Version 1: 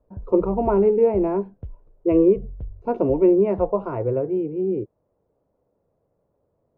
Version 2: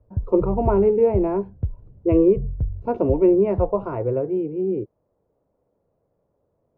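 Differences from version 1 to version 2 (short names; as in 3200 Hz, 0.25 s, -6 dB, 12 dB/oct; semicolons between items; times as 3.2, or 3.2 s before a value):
background: add bell 110 Hz +10.5 dB 2.3 oct; reverb: on, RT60 2.5 s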